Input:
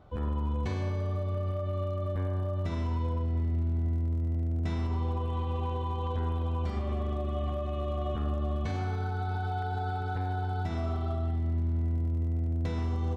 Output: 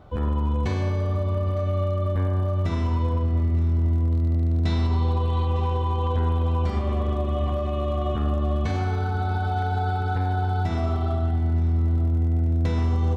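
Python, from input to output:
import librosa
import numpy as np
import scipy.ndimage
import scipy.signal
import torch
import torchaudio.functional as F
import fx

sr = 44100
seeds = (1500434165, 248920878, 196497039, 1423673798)

y = fx.peak_eq(x, sr, hz=4100.0, db=11.0, octaves=0.35, at=(4.11, 5.47))
y = fx.echo_feedback(y, sr, ms=908, feedback_pct=39, wet_db=-17.0)
y = y * 10.0 ** (7.0 / 20.0)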